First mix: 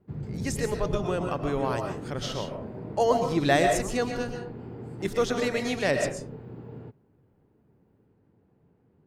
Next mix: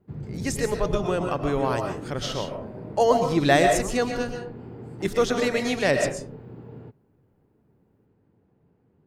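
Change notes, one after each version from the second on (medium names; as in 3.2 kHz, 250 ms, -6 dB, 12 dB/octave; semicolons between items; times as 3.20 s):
speech +3.5 dB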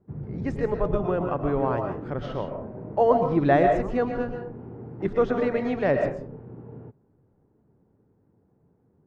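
master: add low-pass 1.4 kHz 12 dB/octave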